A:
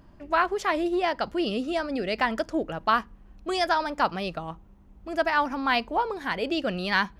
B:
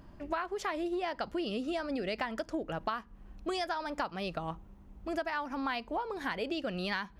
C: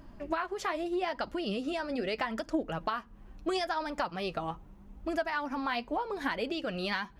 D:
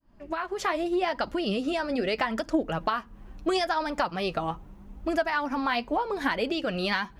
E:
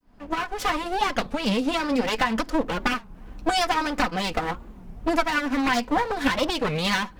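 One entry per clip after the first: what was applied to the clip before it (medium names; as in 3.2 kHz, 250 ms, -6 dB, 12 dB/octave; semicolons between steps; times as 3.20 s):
compression 10:1, threshold -31 dBFS, peak gain reduction 15 dB
flange 0.79 Hz, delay 3 ms, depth 6.3 ms, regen +45%; trim +6 dB
fade-in on the opening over 0.63 s; trim +5.5 dB
comb filter that takes the minimum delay 4 ms; warped record 33 1/3 rpm, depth 250 cents; trim +5.5 dB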